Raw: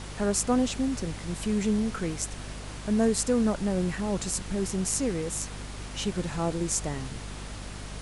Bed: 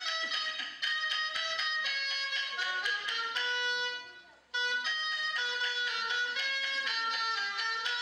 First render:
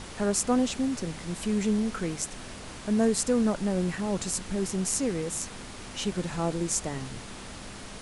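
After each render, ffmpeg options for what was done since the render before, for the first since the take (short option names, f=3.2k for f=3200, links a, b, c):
-af "bandreject=f=50:t=h:w=6,bandreject=f=100:t=h:w=6,bandreject=f=150:t=h:w=6"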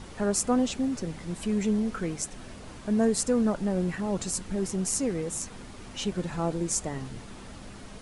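-af "afftdn=nr=7:nf=-42"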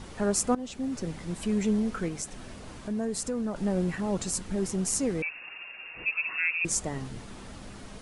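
-filter_complex "[0:a]asettb=1/sr,asplit=3[a][b][c];[a]atrim=end=2.084[d];[b]atrim=start=2.08:end=3.56,asetpts=PTS-STARTPTS,afade=t=in:d=0.004:c=qsin,afade=t=out:st=1.476:d=0.004:c=qsin,acompressor=threshold=-32dB:ratio=2:attack=3.2:release=140:knee=1:detection=peak[e];[c]atrim=start=3.556[f];[d][e]acrossfade=d=0.004:c1=hsin:c2=qsin[g];[g][f]acrossfade=d=0.004:c1=qsin:c2=hsin,asettb=1/sr,asplit=3[h][i][j];[h]atrim=end=5.224[k];[i]atrim=start=5.22:end=6.65,asetpts=PTS-STARTPTS,afade=t=in:d=0.004:c=qsin,afade=t=out:st=1.426:d=0.004:c=qsin,lowpass=f=2.4k:t=q:w=0.5098,lowpass=f=2.4k:t=q:w=0.6013,lowpass=f=2.4k:t=q:w=0.9,lowpass=f=2.4k:t=q:w=2.563,afreqshift=-2800[l];[j]atrim=start=6.646[m];[k][l]acrossfade=d=0.004:c1=hsin:c2=qsin[n];[n][m]acrossfade=d=0.004:c1=qsin:c2=hsin,asplit=2[o][p];[o]atrim=end=0.55,asetpts=PTS-STARTPTS,afade=t=out:st=0.546:d=0.004:c=hsin:silence=0.141254[q];[p]atrim=start=0.55,asetpts=PTS-STARTPTS,afade=t=in:d=0.52:silence=0.141254[r];[q][r]concat=n=2:v=0:a=1"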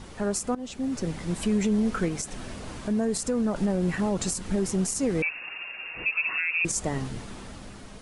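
-af "dynaudnorm=f=260:g=7:m=5.5dB,alimiter=limit=-17dB:level=0:latency=1:release=100"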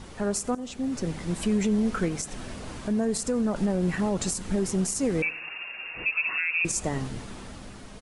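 -af "aecho=1:1:88|176|264:0.0631|0.0322|0.0164"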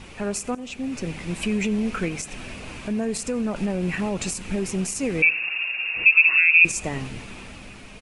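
-af "equalizer=f=2.5k:t=o:w=0.46:g=13.5"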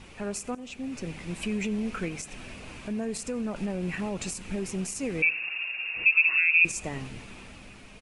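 -af "volume=-6dB"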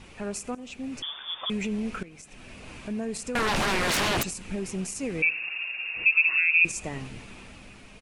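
-filter_complex "[0:a]asettb=1/sr,asplit=3[a][b][c];[a]atrim=end=1.024[d];[b]atrim=start=1.02:end=1.5,asetpts=PTS-STARTPTS,afade=t=in:d=0.004:c=qsin,afade=t=out:st=0.476:d=0.004:c=qsin,lowpass=f=3.1k:t=q:w=0.5098,lowpass=f=3.1k:t=q:w=0.6013,lowpass=f=3.1k:t=q:w=0.9,lowpass=f=3.1k:t=q:w=2.563,afreqshift=-3600[e];[c]atrim=start=1.496[f];[d][e]acrossfade=d=0.004:c1=hsin:c2=qsin[g];[g][f]acrossfade=d=0.004:c1=qsin:c2=hsin,asettb=1/sr,asplit=3[h][i][j];[h]atrim=end=3.354[k];[i]atrim=start=3.35:end=4.23,asetpts=PTS-STARTPTS,afade=t=in:d=0.004:c=qsin,afade=t=out:st=0.876:d=0.004:c=qsin,aeval=exprs='0.0794*sin(PI/2*7.08*val(0)/0.0794)':c=same[l];[j]atrim=start=4.226[m];[k][l]acrossfade=d=0.004:c1=hsin:c2=qsin[n];[n][m]acrossfade=d=0.004:c1=qsin:c2=hsin,asplit=2[o][p];[o]atrim=end=2.03,asetpts=PTS-STARTPTS,afade=t=out:st=2.026:d=0.004:c=hsin:silence=0.125893[q];[p]atrim=start=2.03,asetpts=PTS-STARTPTS,afade=t=in:d=0.71:silence=0.125893[r];[q][r]concat=n=2:v=0:a=1"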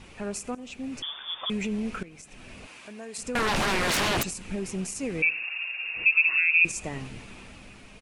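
-filter_complex "[0:a]asettb=1/sr,asplit=3[a][b][c];[a]atrim=end=2.664[d];[b]atrim=start=2.66:end=3.18,asetpts=PTS-STARTPTS,afade=t=in:d=0.004:c=qsin,afade=t=out:st=0.516:d=0.004:c=qsin,highpass=f=930:p=1[e];[c]atrim=start=3.176[f];[d][e]acrossfade=d=0.004:c1=hsin:c2=qsin[g];[g][f]acrossfade=d=0.004:c1=qsin:c2=hsin,asettb=1/sr,asplit=3[h][i][j];[h]atrim=end=5.434[k];[i]atrim=start=5.43:end=5.83,asetpts=PTS-STARTPTS,afade=t=in:d=0.004:c=qsin,afade=t=out:st=0.396:d=0.004:c=qsin,highpass=490[l];[j]atrim=start=5.826[m];[k][l]acrossfade=d=0.004:c1=hsin:c2=qsin[n];[n][m]acrossfade=d=0.004:c1=qsin:c2=hsin"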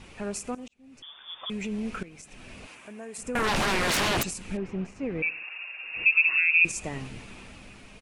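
-filter_complex "[0:a]asettb=1/sr,asplit=3[a][b][c];[a]atrim=end=2.754[d];[b]atrim=start=2.75:end=3.44,asetpts=PTS-STARTPTS,afade=t=in:d=0.004:c=qsin,afade=t=out:st=0.686:d=0.004:c=qsin,equalizer=f=4.4k:t=o:w=0.98:g=-9.5[e];[c]atrim=start=3.436[f];[d][e]acrossfade=d=0.004:c1=hsin:c2=qsin[g];[g][f]acrossfade=d=0.004:c1=qsin:c2=hsin,asettb=1/sr,asplit=3[h][i][j];[h]atrim=end=4.574[k];[i]atrim=start=4.57:end=5.93,asetpts=PTS-STARTPTS,afade=t=in:d=0.004:c=qsin,afade=t=out:st=1.356:d=0.004:c=qsin,lowpass=2k[l];[j]atrim=start=5.926[m];[k][l]acrossfade=d=0.004:c1=hsin:c2=qsin[n];[n][m]acrossfade=d=0.004:c1=qsin:c2=hsin,asplit=2[o][p];[o]atrim=end=0.68,asetpts=PTS-STARTPTS,afade=t=out:st=0.676:d=0.004:c=hsin[q];[p]atrim=start=0.68,asetpts=PTS-STARTPTS,afade=t=in:d=1.36[r];[q][r]concat=n=2:v=0:a=1"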